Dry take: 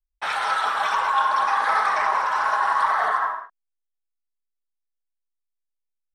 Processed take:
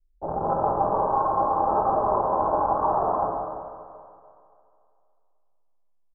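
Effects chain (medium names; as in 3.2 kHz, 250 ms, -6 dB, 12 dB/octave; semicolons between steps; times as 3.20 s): local Wiener filter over 41 samples; in parallel at +2 dB: gain riding within 4 dB; on the sum: Gaussian low-pass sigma 13 samples; multi-tap echo 49/190/330 ms -8/-9.5/-13 dB; on a send at -3 dB: reverberation RT60 2.5 s, pre-delay 4 ms; on the sum: trim +5.5 dB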